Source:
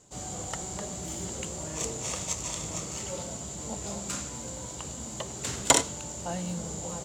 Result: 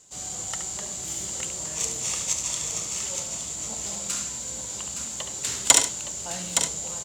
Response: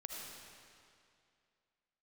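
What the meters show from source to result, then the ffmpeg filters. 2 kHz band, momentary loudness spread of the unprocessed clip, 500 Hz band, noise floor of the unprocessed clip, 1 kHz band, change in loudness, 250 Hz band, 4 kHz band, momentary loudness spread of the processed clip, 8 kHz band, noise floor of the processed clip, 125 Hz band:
+3.5 dB, 11 LU, -3.5 dB, -40 dBFS, -1.0 dB, +6.0 dB, -5.0 dB, +6.0 dB, 11 LU, +7.5 dB, -35 dBFS, -5.5 dB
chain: -filter_complex "[0:a]tiltshelf=f=1.4k:g=-6.5,asoftclip=type=hard:threshold=-1.5dB,asplit=2[a][b];[b]aecho=0:1:71|866:0.398|0.447[c];[a][c]amix=inputs=2:normalize=0"

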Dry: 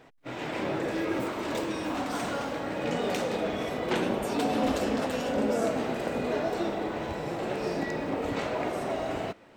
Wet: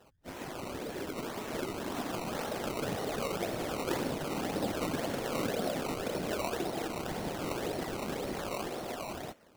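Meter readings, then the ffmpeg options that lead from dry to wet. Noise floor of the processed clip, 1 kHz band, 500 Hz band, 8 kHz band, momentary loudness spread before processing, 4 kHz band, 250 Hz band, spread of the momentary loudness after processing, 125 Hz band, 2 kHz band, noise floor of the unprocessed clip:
-56 dBFS, -5.5 dB, -6.0 dB, +1.0 dB, 6 LU, -2.5 dB, -6.5 dB, 6 LU, -3.0 dB, -5.5 dB, -49 dBFS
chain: -af "acompressor=threshold=-33dB:ratio=2,aresample=22050,aresample=44100,afftfilt=real='hypot(re,im)*cos(2*PI*random(0))':imag='hypot(re,im)*sin(2*PI*random(1))':win_size=512:overlap=0.75,acrusher=samples=18:mix=1:aa=0.000001:lfo=1:lforange=18:lforate=1.9,dynaudnorm=f=340:g=9:m=5dB"

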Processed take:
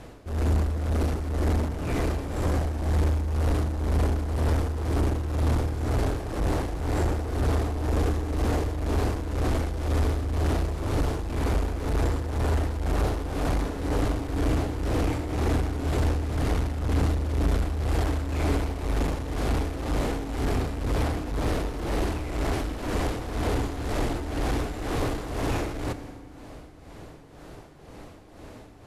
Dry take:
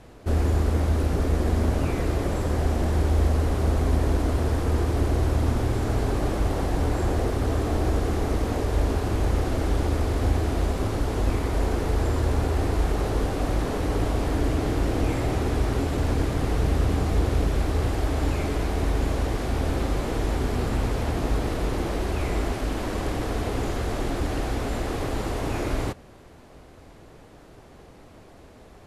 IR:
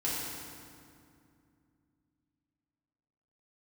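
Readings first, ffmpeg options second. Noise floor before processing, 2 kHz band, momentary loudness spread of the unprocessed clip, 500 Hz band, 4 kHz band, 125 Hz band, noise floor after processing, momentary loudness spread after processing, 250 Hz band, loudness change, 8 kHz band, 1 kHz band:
-49 dBFS, -1.5 dB, 5 LU, -3.0 dB, -2.0 dB, -1.5 dB, -46 dBFS, 5 LU, -2.0 dB, -2.0 dB, -2.0 dB, -2.0 dB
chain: -filter_complex "[0:a]asoftclip=type=tanh:threshold=-26dB,tremolo=f=2:d=0.69,asplit=2[a][b];[1:a]atrim=start_sample=2205[c];[b][c]afir=irnorm=-1:irlink=0,volume=-16dB[d];[a][d]amix=inputs=2:normalize=0,volume=4dB"

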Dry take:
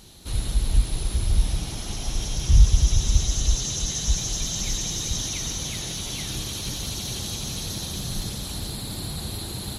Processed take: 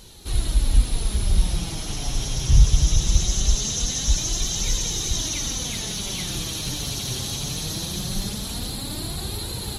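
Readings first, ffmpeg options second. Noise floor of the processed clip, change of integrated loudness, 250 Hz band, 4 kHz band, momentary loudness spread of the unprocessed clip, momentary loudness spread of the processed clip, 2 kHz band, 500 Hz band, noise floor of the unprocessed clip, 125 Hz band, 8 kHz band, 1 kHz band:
-31 dBFS, +1.5 dB, +2.5 dB, +2.5 dB, 9 LU, 8 LU, +2.5 dB, +2.5 dB, -34 dBFS, +1.0 dB, +2.5 dB, +2.5 dB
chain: -af "flanger=delay=1.9:depth=5.8:regen=49:speed=0.21:shape=triangular,volume=6.5dB"

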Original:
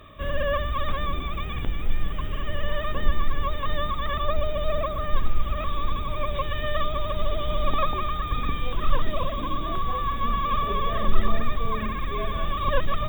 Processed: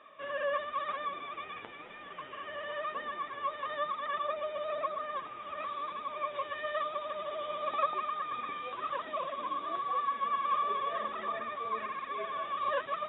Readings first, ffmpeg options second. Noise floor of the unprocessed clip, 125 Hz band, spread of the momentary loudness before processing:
-30 dBFS, under -30 dB, 5 LU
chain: -af "flanger=delay=3.4:depth=7.8:regen=40:speed=0.99:shape=triangular,highpass=550,lowpass=2.4k"

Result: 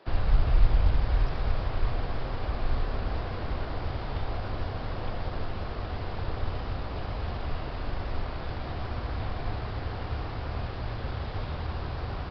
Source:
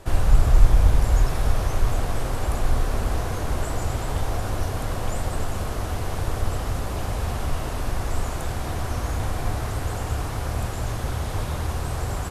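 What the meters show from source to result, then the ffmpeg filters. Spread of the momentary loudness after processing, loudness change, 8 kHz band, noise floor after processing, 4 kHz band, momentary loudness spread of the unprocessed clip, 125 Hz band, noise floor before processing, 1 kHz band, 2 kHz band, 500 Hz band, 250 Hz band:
8 LU, -6.5 dB, under -30 dB, -36 dBFS, -6.0 dB, 8 LU, -6.5 dB, -29 dBFS, -6.0 dB, -5.5 dB, -6.0 dB, -6.0 dB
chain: -filter_complex "[0:a]acrossover=split=180|850|2000[a][b][c][d];[a]acrusher=bits=5:mix=0:aa=0.000001[e];[e][b][c][d]amix=inputs=4:normalize=0,aresample=11025,aresample=44100,volume=-6.5dB"

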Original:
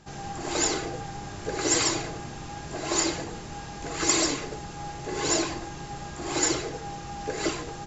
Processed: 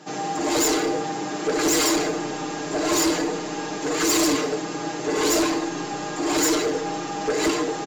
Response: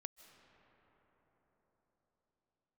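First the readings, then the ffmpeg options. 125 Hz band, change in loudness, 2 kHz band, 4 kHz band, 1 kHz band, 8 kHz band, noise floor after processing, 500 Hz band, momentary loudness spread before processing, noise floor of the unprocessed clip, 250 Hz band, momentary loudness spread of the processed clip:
-0.5 dB, +5.5 dB, +5.5 dB, +4.0 dB, +6.5 dB, n/a, -31 dBFS, +8.5 dB, 15 LU, -40 dBFS, +9.0 dB, 9 LU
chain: -filter_complex "[0:a]highpass=f=210:w=0.5412,highpass=f=210:w=1.3066,equalizer=f=340:w=0.6:g=5,aecho=1:1:6.6:0.95,asoftclip=type=tanh:threshold=-24dB,asplit=2[a][b];[1:a]atrim=start_sample=2205[c];[b][c]afir=irnorm=-1:irlink=0,volume=6.5dB[d];[a][d]amix=inputs=2:normalize=0"

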